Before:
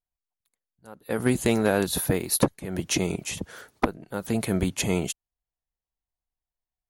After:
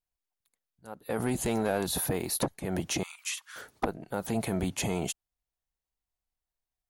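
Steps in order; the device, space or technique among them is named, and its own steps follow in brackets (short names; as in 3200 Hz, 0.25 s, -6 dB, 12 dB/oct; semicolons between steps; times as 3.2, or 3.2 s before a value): soft clipper into limiter (soft clip -13.5 dBFS, distortion -18 dB; limiter -22 dBFS, peak gain reduction 7.5 dB); 3.03–3.56 elliptic high-pass 1100 Hz, stop band 60 dB; dynamic EQ 760 Hz, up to +7 dB, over -50 dBFS, Q 2.1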